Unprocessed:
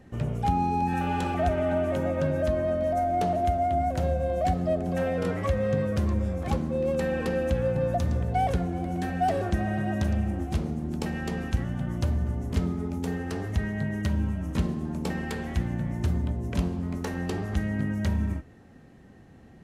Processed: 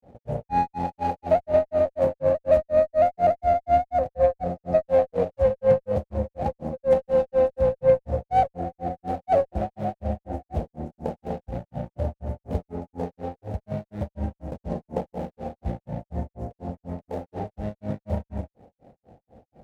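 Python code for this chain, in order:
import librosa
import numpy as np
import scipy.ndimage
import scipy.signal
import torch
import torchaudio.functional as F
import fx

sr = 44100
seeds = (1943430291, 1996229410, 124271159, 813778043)

y = scipy.signal.medfilt(x, 41)
y = fx.granulator(y, sr, seeds[0], grain_ms=192.0, per_s=4.1, spray_ms=100.0, spread_st=0)
y = fx.band_shelf(y, sr, hz=640.0, db=14.5, octaves=1.1)
y = fx.cheby_harmonics(y, sr, harmonics=(6,), levels_db=(-32,), full_scale_db=-7.0)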